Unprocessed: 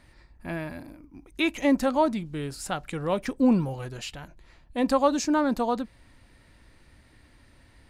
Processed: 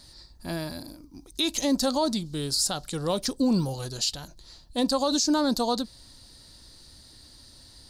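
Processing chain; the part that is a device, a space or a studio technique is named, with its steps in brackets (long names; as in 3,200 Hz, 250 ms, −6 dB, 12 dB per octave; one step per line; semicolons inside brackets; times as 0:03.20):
over-bright horn tweeter (high shelf with overshoot 3,200 Hz +11.5 dB, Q 3; brickwall limiter −16.5 dBFS, peak gain reduction 11.5 dB)
level +1 dB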